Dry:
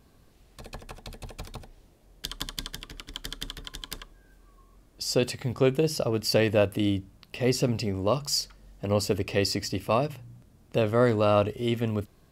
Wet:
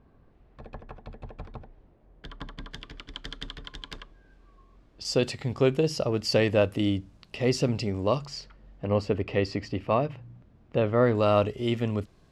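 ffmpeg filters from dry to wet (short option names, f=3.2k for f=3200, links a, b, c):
-af "asetnsamples=n=441:p=0,asendcmd='2.71 lowpass f 3700;5.05 lowpass f 6700;8.26 lowpass f 2600;11.15 lowpass f 6800',lowpass=1.6k"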